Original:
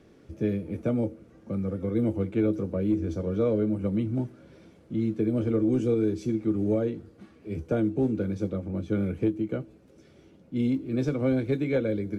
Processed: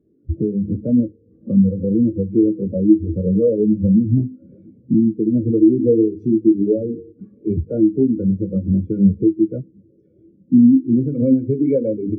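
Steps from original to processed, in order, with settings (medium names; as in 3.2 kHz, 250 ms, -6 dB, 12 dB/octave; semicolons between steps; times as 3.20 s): de-hum 51.1 Hz, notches 10; compression 6:1, threshold -39 dBFS, peak gain reduction 17.5 dB; on a send: echo that smears into a reverb 640 ms, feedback 48%, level -16 dB; on the sum: loudness maximiser +31 dB; spectral contrast expander 2.5:1; trim -1 dB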